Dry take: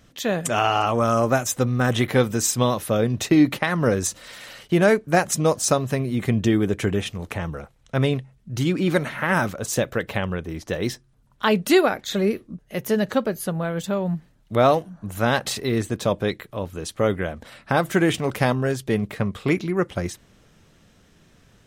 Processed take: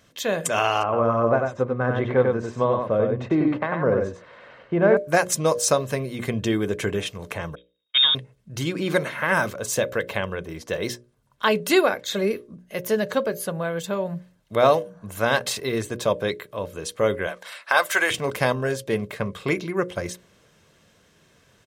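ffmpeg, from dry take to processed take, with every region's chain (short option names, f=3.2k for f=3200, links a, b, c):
-filter_complex "[0:a]asettb=1/sr,asplit=3[a][b][c];[a]atrim=end=0.834[d];[b]atrim=start=0.83:end=4.97,asetpts=PTS-STARTPTS,afade=t=in:d=0.004:c=qsin,afade=t=out:st=4.136:d=0.004:c=qsin,lowpass=1.3k,aecho=1:1:95:0.631,atrim=end_sample=182574[e];[c]atrim=start=4.966[f];[d][e]acrossfade=d=0.004:c1=hsin:c2=qsin[g];[g][f]acrossfade=d=0.004:c1=qsin:c2=hsin,asettb=1/sr,asplit=3[h][i][j];[h]atrim=end=7.554[k];[i]atrim=start=7.55:end=8.15,asetpts=PTS-STARTPTS,afade=t=in:d=0.004:c=qsin,afade=t=out:st=0.596:d=0.004:c=qsin,aeval=exprs='val(0)+0.5*0.0335*sgn(val(0))':c=same,agate=range=-48dB:threshold=-26dB:ratio=16:release=100:detection=peak,lowpass=f=3.2k:t=q:w=0.5098,lowpass=f=3.2k:t=q:w=0.6013,lowpass=f=3.2k:t=q:w=0.9,lowpass=f=3.2k:t=q:w=2.563,afreqshift=-3800[l];[j]atrim=start=8.146[m];[k][l]acrossfade=d=0.004:c1=hsin:c2=qsin[n];[n][m]acrossfade=d=0.004:c1=qsin:c2=hsin,asettb=1/sr,asplit=3[o][p][q];[o]atrim=end=17.274[r];[p]atrim=start=17.27:end=18.11,asetpts=PTS-STARTPTS,afade=t=in:d=0.004:c=qsin,afade=t=out:st=0.836:d=0.004:c=qsin,highpass=890,acontrast=57[s];[q]atrim=start=18.106[t];[r][s]acrossfade=d=0.004:c1=hsin:c2=qsin[u];[u][t]acrossfade=d=0.004:c1=qsin:c2=hsin,highpass=f=190:p=1,bandreject=f=60:t=h:w=6,bandreject=f=120:t=h:w=6,bandreject=f=180:t=h:w=6,bandreject=f=240:t=h:w=6,bandreject=f=300:t=h:w=6,bandreject=f=360:t=h:w=6,bandreject=f=420:t=h:w=6,bandreject=f=480:t=h:w=6,bandreject=f=540:t=h:w=6,bandreject=f=600:t=h:w=6,aecho=1:1:1.9:0.33"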